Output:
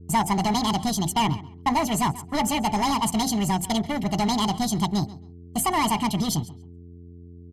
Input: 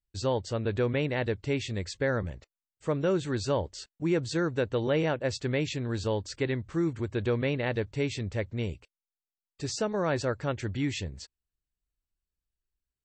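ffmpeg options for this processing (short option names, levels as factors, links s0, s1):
-filter_complex "[0:a]bandreject=f=50:t=h:w=6,bandreject=f=100:t=h:w=6,bandreject=f=150:t=h:w=6,bandreject=f=200:t=h:w=6,bandreject=f=250:t=h:w=6,bandreject=f=300:t=h:w=6,bandreject=f=350:t=h:w=6,bandreject=f=400:t=h:w=6,bandreject=f=450:t=h:w=6,bandreject=f=500:t=h:w=6,agate=range=0.0112:threshold=0.01:ratio=16:detection=peak,aresample=16000,volume=25.1,asoftclip=hard,volume=0.0398,aresample=44100,aecho=1:1:1.7:0.92,aeval=exprs='val(0)+0.00316*(sin(2*PI*50*n/s)+sin(2*PI*2*50*n/s)/2+sin(2*PI*3*50*n/s)/3+sin(2*PI*4*50*n/s)/4+sin(2*PI*5*50*n/s)/5)':c=same,aeval=exprs='0.0891*(cos(1*acos(clip(val(0)/0.0891,-1,1)))-cos(1*PI/2))+0.00158*(cos(8*acos(clip(val(0)/0.0891,-1,1)))-cos(8*PI/2))':c=same,adynamicequalizer=threshold=0.00501:dfrequency=680:dqfactor=0.7:tfrequency=680:tqfactor=0.7:attack=5:release=100:ratio=0.375:range=2.5:mode=cutabove:tftype=bell,asplit=2[s0][s1];[s1]adelay=234,lowpass=f=2900:p=1,volume=0.133,asplit=2[s2][s3];[s3]adelay=234,lowpass=f=2900:p=1,volume=0.21[s4];[s0][s2][s4]amix=inputs=3:normalize=0,asetrate=76440,aresample=44100,volume=2.51"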